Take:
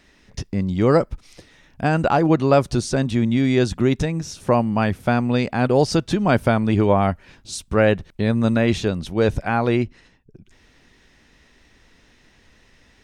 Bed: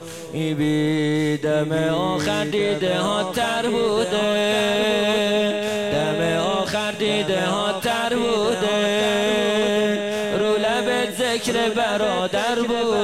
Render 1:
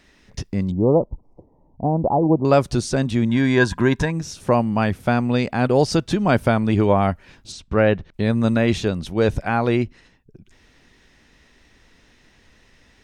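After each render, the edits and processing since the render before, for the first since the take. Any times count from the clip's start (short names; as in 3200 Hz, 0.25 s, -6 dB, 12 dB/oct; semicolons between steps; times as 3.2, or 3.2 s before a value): 0.71–2.45 elliptic low-pass 950 Hz; 3.29–4.11 small resonant body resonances 1000/1600 Hz, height 18 dB, ringing for 35 ms; 7.52–8.14 air absorption 130 m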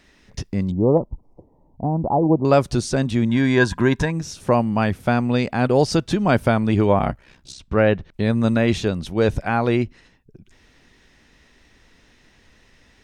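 0.97–2.1 dynamic EQ 520 Hz, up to -7 dB, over -34 dBFS, Q 1.5; 6.98–7.6 ring modulator 32 Hz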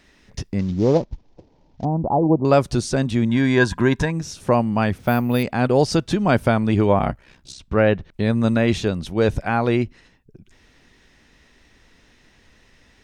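0.59–1.85 CVSD 32 kbps; 4.98–5.43 careless resampling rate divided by 3×, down filtered, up hold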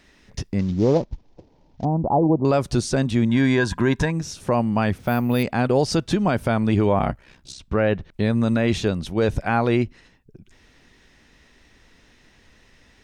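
limiter -8.5 dBFS, peak gain reduction 6 dB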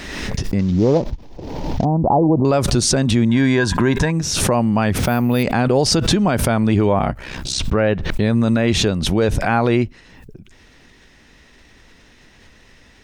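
in parallel at -1.5 dB: limiter -16 dBFS, peak gain reduction 7.5 dB; on the sum: backwards sustainer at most 35 dB/s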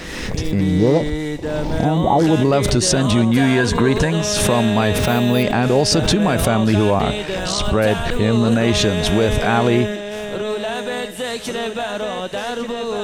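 add bed -3.5 dB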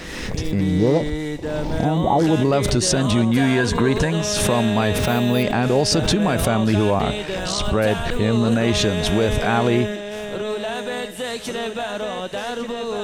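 gain -2.5 dB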